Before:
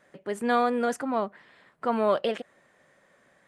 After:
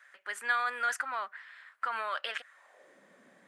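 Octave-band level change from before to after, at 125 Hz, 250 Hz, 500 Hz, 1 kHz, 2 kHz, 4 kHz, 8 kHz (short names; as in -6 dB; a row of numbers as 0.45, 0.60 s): n/a, -32.0 dB, -19.0 dB, -5.5 dB, +4.5 dB, -0.5 dB, 0.0 dB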